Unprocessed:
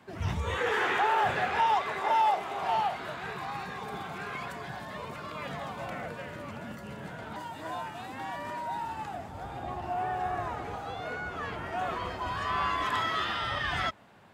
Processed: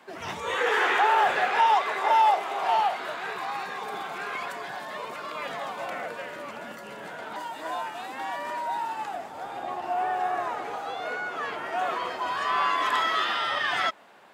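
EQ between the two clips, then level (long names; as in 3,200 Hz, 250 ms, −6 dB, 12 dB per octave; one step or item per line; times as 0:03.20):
high-pass filter 370 Hz 12 dB per octave
+5.0 dB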